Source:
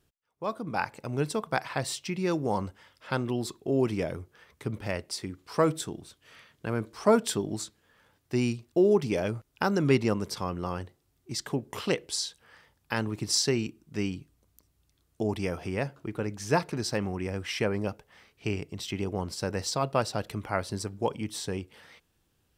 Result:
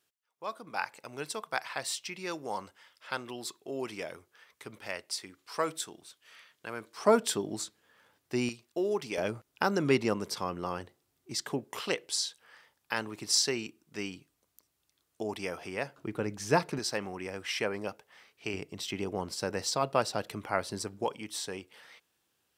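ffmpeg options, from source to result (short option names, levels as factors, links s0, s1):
-af "asetnsamples=n=441:p=0,asendcmd='6.97 highpass f 310;8.49 highpass f 970;9.18 highpass f 290;11.65 highpass f 620;15.98 highpass f 150;16.79 highpass f 570;18.54 highpass f 270;21.04 highpass f 640',highpass=f=1200:p=1"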